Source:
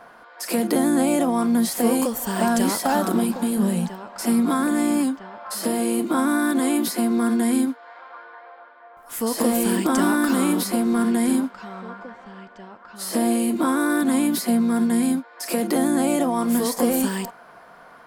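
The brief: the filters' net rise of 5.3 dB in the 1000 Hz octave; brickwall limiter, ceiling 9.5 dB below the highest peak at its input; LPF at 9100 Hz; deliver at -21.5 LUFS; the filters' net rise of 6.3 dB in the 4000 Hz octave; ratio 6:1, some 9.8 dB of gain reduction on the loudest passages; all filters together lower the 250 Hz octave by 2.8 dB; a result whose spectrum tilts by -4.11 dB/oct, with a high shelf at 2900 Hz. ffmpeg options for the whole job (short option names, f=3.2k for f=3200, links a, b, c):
-af "lowpass=9.1k,equalizer=f=250:t=o:g=-3.5,equalizer=f=1k:t=o:g=6.5,highshelf=f=2.9k:g=4,equalizer=f=4k:t=o:g=4.5,acompressor=threshold=-25dB:ratio=6,volume=10dB,alimiter=limit=-12dB:level=0:latency=1"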